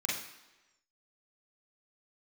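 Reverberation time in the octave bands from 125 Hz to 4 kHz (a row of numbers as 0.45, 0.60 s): 0.85, 1.0, 1.1, 1.1, 1.0, 1.0 s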